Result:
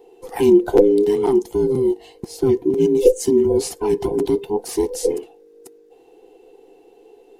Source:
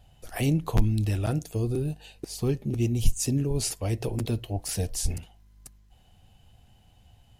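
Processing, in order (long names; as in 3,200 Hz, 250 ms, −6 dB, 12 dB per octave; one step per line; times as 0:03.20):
frequency inversion band by band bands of 500 Hz
hollow resonant body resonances 340/700 Hz, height 13 dB, ringing for 25 ms
level +1 dB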